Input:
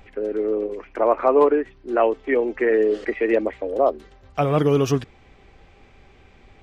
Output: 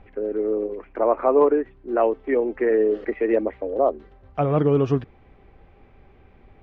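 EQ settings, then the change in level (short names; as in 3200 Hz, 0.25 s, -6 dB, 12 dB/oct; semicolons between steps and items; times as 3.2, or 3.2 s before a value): LPF 1300 Hz 6 dB/oct; air absorption 120 m; 0.0 dB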